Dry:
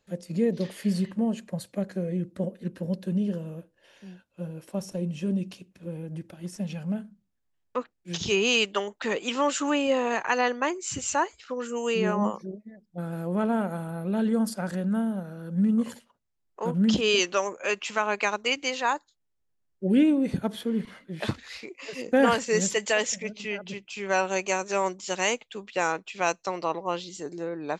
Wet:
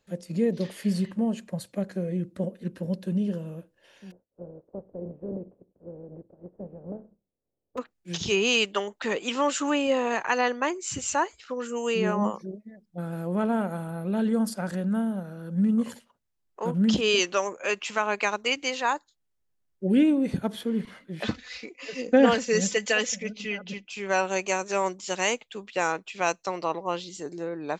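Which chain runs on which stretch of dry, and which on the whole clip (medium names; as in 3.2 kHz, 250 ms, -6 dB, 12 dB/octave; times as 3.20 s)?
4.10–7.77 s: spectral contrast reduction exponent 0.49 + four-pole ladder low-pass 610 Hz, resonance 45%
21.23–23.91 s: steep low-pass 7.2 kHz 48 dB/octave + peaking EQ 960 Hz -4 dB 0.61 oct + comb 4 ms, depth 53%
whole clip: none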